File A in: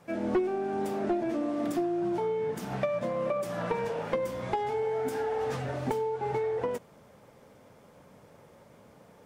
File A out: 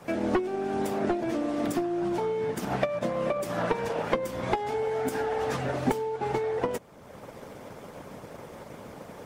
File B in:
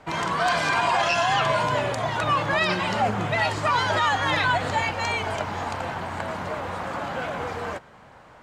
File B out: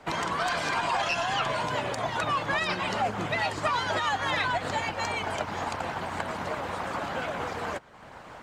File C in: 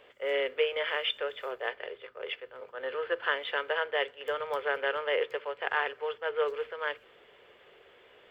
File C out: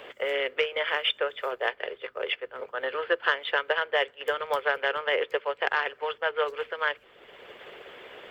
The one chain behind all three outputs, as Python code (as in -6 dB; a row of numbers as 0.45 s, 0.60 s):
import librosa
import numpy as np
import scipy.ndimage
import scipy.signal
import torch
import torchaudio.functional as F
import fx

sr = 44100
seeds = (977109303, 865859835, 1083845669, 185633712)

y = 10.0 ** (-13.0 / 20.0) * np.tanh(x / 10.0 ** (-13.0 / 20.0))
y = fx.transient(y, sr, attack_db=2, sustain_db=-3)
y = fx.hpss(y, sr, part='percussive', gain_db=8)
y = fx.band_squash(y, sr, depth_pct=40)
y = y * 10.0 ** (-30 / 20.0) / np.sqrt(np.mean(np.square(y)))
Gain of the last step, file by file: +0.5 dB, -8.5 dB, -2.0 dB